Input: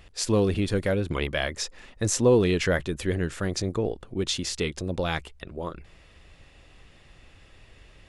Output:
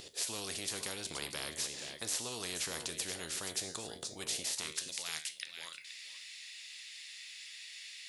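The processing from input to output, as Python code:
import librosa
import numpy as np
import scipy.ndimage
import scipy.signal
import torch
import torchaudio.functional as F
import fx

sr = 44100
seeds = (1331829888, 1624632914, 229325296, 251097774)

p1 = fx.curve_eq(x, sr, hz=(130.0, 390.0, 1300.0, 2800.0, 4100.0), db=(0, -19, -25, -17, -3))
p2 = fx.filter_sweep_highpass(p1, sr, from_hz=420.0, to_hz=2100.0, start_s=4.33, end_s=4.9, q=3.5)
p3 = fx.low_shelf(p2, sr, hz=140.0, db=-5.5)
p4 = fx.comb_fb(p3, sr, f0_hz=78.0, decay_s=0.29, harmonics='all', damping=0.0, mix_pct=60)
p5 = p4 + fx.echo_single(p4, sr, ms=476, db=-18.5, dry=0)
y = fx.spectral_comp(p5, sr, ratio=4.0)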